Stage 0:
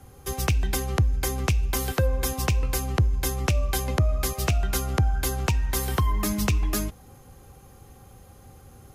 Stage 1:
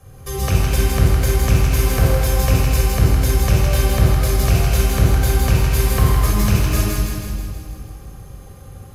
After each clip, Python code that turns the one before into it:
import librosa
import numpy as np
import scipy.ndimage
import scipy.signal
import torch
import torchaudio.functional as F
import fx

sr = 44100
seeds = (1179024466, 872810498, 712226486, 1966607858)

y = np.clip(10.0 ** (18.0 / 20.0) * x, -1.0, 1.0) / 10.0 ** (18.0 / 20.0)
y = fx.echo_thinned(y, sr, ms=161, feedback_pct=62, hz=1100.0, wet_db=-3)
y = fx.room_shoebox(y, sr, seeds[0], volume_m3=3100.0, walls='mixed', distance_m=5.8)
y = F.gain(torch.from_numpy(y), -2.0).numpy()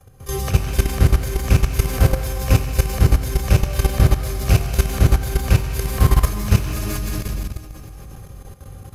y = x + 10.0 ** (-21.5 / 20.0) * np.pad(x, (int(798 * sr / 1000.0), 0))[:len(x)]
y = fx.level_steps(y, sr, step_db=13)
y = F.gain(torch.from_numpy(y), 3.0).numpy()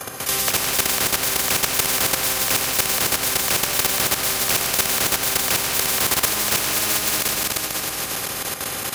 y = scipy.signal.sosfilt(scipy.signal.butter(2, 390.0, 'highpass', fs=sr, output='sos'), x)
y = fx.spectral_comp(y, sr, ratio=4.0)
y = F.gain(torch.from_numpy(y), 8.0).numpy()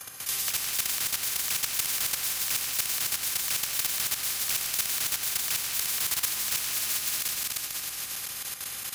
y = fx.tone_stack(x, sr, knobs='5-5-5')
y = F.gain(torch.from_numpy(y), -1.5).numpy()